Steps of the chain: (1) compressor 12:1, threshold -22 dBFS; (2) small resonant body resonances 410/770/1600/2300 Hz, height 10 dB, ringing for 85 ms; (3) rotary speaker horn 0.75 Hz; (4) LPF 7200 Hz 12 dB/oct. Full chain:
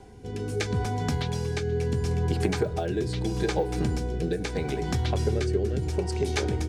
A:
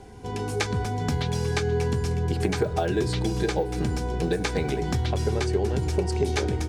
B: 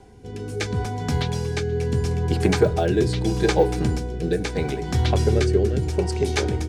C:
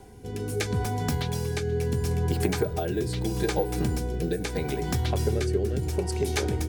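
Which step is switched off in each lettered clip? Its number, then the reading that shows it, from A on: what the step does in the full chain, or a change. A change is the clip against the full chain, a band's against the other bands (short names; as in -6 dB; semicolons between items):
3, loudness change +1.5 LU; 1, mean gain reduction 4.0 dB; 4, 8 kHz band +3.5 dB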